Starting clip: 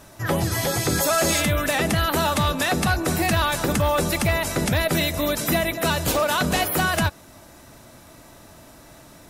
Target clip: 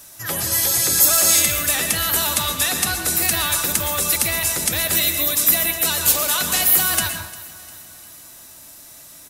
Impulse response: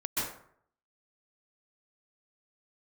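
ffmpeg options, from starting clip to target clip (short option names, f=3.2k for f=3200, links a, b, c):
-filter_complex "[0:a]aecho=1:1:351|702|1053|1404:0.106|0.0572|0.0309|0.0167,asplit=2[a][b];[1:a]atrim=start_sample=2205,asetrate=48510,aresample=44100[c];[b][c]afir=irnorm=-1:irlink=0,volume=-9.5dB[d];[a][d]amix=inputs=2:normalize=0,crystalizer=i=8.5:c=0,volume=-11.5dB"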